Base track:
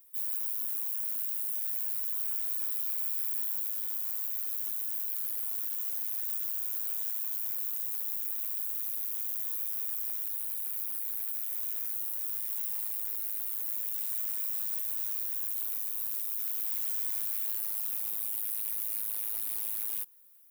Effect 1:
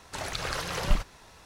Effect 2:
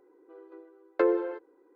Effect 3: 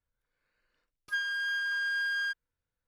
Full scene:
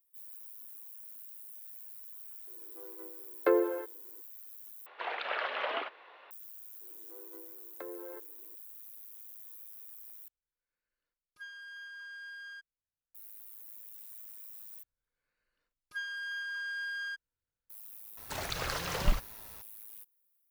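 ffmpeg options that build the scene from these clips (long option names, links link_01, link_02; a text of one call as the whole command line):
ffmpeg -i bed.wav -i cue0.wav -i cue1.wav -i cue2.wav -filter_complex "[2:a]asplit=2[link_01][link_02];[1:a]asplit=2[link_03][link_04];[3:a]asplit=2[link_05][link_06];[0:a]volume=-15.5dB[link_07];[link_01]equalizer=frequency=180:width=1.9:gain=-10[link_08];[link_03]highpass=frequency=320:width_type=q:width=0.5412,highpass=frequency=320:width_type=q:width=1.307,lowpass=frequency=3200:width_type=q:width=0.5176,lowpass=frequency=3200:width_type=q:width=0.7071,lowpass=frequency=3200:width_type=q:width=1.932,afreqshift=85[link_09];[link_02]acompressor=threshold=-37dB:ratio=6:attack=3.2:release=140:knee=1:detection=peak[link_10];[link_07]asplit=4[link_11][link_12][link_13][link_14];[link_11]atrim=end=4.864[link_15];[link_09]atrim=end=1.45[link_16];[link_12]atrim=start=6.306:end=10.284[link_17];[link_05]atrim=end=2.87,asetpts=PTS-STARTPTS,volume=-15dB[link_18];[link_13]atrim=start=13.146:end=14.834[link_19];[link_06]atrim=end=2.87,asetpts=PTS-STARTPTS,volume=-6.5dB[link_20];[link_14]atrim=start=17.696[link_21];[link_08]atrim=end=1.75,asetpts=PTS-STARTPTS,volume=-1dB,afade=type=in:duration=0.004:curve=hsin,afade=type=out:start_time=1.746:duration=0.004:curve=hsin,adelay=2470[link_22];[link_10]atrim=end=1.75,asetpts=PTS-STARTPTS,volume=-4.5dB,afade=type=in:duration=0.004:curve=hsin,afade=type=out:start_time=1.746:duration=0.004:curve=hsin,adelay=6810[link_23];[link_04]atrim=end=1.45,asetpts=PTS-STARTPTS,volume=-3dB,afade=type=in:duration=0.004:curve=hsin,afade=type=out:start_time=1.446:duration=0.004:curve=hsin,adelay=18170[link_24];[link_15][link_16]acrossfade=duration=0.004:curve1=hsin:curve2=hsin[link_25];[link_25][link_17]acrossfade=duration=0.004:curve1=hsin:curve2=hsin[link_26];[link_26][link_18]acrossfade=duration=0.004:curve1=hsin:curve2=hsin[link_27];[link_27][link_19]acrossfade=duration=0.004:curve1=hsin:curve2=hsin[link_28];[link_28][link_20]acrossfade=duration=0.004:curve1=hsin:curve2=hsin[link_29];[link_29][link_21]acrossfade=duration=0.004:curve1=hsin:curve2=hsin[link_30];[link_30][link_22][link_23][link_24]amix=inputs=4:normalize=0" out.wav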